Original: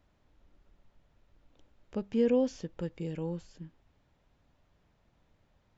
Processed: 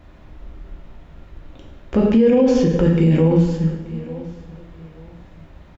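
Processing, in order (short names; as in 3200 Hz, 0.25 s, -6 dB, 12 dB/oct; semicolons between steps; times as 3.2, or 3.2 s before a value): tone controls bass +4 dB, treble -9 dB; notches 50/100/150/200/250 Hz; doubler 49 ms -12.5 dB; on a send: feedback echo 0.882 s, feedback 32%, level -21 dB; on the sum: two-slope reverb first 0.81 s, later 2.9 s, from -24 dB, DRR -0.5 dB; maximiser +25.5 dB; gain -6 dB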